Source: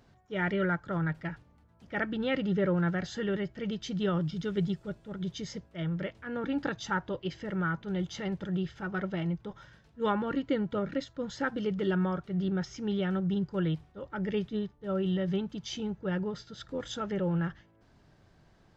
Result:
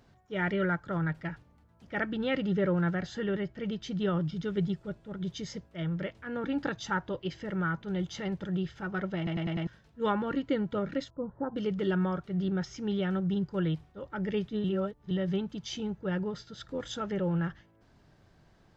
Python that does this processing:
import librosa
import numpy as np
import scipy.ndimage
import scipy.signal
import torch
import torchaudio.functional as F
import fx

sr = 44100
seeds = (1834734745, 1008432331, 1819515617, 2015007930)

y = fx.high_shelf(x, sr, hz=4600.0, db=-6.0, at=(2.94, 5.25))
y = fx.cheby1_lowpass(y, sr, hz=1100.0, order=4, at=(11.1, 11.56))
y = fx.edit(y, sr, fx.stutter_over(start_s=9.17, slice_s=0.1, count=5),
    fx.reverse_span(start_s=14.64, length_s=0.47), tone=tone)